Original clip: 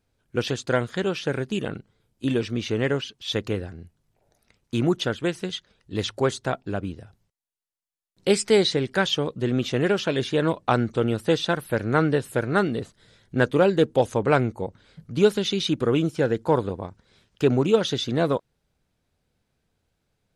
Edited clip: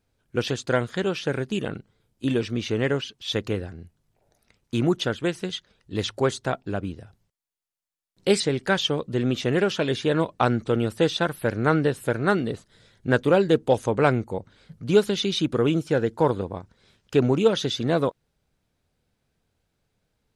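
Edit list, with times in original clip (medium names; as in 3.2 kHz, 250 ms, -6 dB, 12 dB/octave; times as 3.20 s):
8.40–8.68 s: delete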